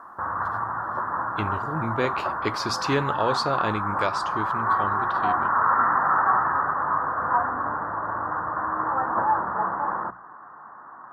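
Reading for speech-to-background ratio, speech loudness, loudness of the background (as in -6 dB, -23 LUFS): -4.5 dB, -29.5 LUFS, -25.0 LUFS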